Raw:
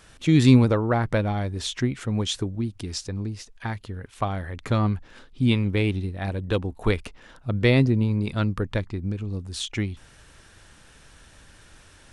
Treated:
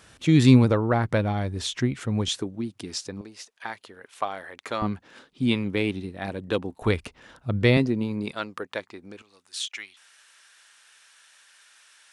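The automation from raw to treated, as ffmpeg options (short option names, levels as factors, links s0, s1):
-af "asetnsamples=n=441:p=0,asendcmd='2.28 highpass f 200;3.21 highpass f 490;4.82 highpass f 180;6.82 highpass f 63;7.77 highpass f 210;8.31 highpass f 480;9.22 highpass f 1400',highpass=68"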